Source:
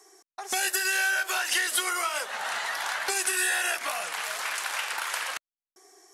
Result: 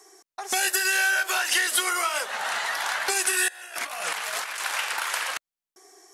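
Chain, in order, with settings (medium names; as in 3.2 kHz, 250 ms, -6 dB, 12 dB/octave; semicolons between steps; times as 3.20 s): 3.48–4.60 s: compressor with a negative ratio -35 dBFS, ratio -0.5; trim +3 dB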